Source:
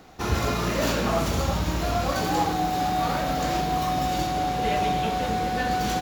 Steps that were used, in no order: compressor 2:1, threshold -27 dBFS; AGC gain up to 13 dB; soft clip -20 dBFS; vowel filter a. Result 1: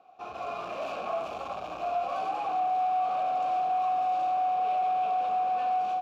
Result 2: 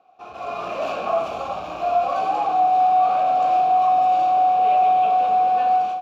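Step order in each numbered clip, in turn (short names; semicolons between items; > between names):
AGC > soft clip > vowel filter > compressor; soft clip > vowel filter > compressor > AGC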